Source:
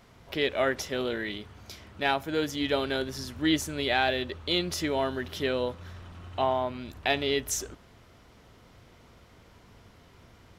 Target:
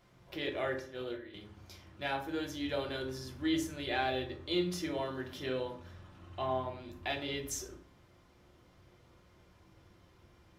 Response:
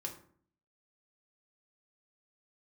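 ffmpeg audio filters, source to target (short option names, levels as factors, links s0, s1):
-filter_complex "[0:a]asettb=1/sr,asplit=3[s0][s1][s2];[s0]atrim=end=0.794[s3];[s1]atrim=start=0.79:end=1.34,asetpts=PTS-STARTPTS,afade=t=in:d=0.004:c=qsin,afade=t=out:st=0.546:d=0.004:c=qsin,agate=range=0.224:threshold=0.0355:ratio=16:detection=peak[s4];[s2]atrim=start=1.336[s5];[s3][s4]acrossfade=d=0.004:c1=hsin:c2=qsin[s6];[s6][s5]acrossfade=d=0.004:c1=qsin:c2=hsin[s7];[1:a]atrim=start_sample=2205[s8];[s7][s8]afir=irnorm=-1:irlink=0,volume=0.447"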